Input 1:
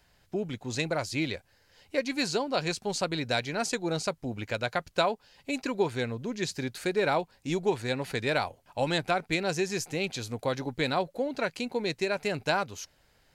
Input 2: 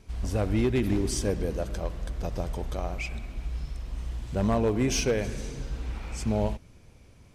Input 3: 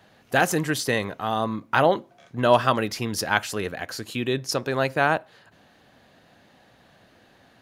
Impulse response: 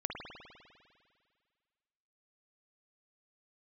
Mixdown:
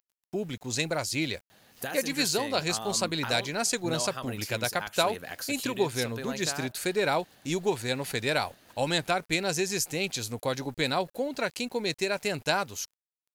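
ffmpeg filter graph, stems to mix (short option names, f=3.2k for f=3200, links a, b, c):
-filter_complex "[0:a]aemphasis=mode=production:type=50kf,aeval=exprs='val(0)*gte(abs(val(0)),0.00282)':c=same,volume=-0.5dB[a];[2:a]aemphasis=mode=production:type=75kf,acompressor=threshold=-29dB:ratio=6,adelay=1500,volume=-5dB[b];[a][b]amix=inputs=2:normalize=0"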